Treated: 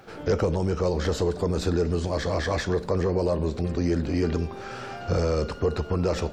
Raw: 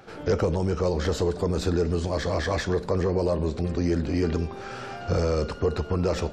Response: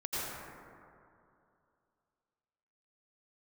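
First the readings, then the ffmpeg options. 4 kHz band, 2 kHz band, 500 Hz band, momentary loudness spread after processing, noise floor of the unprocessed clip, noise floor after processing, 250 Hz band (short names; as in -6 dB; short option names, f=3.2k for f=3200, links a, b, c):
0.0 dB, 0.0 dB, 0.0 dB, 3 LU, -39 dBFS, -39 dBFS, 0.0 dB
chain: -af "acrusher=bits=11:mix=0:aa=0.000001"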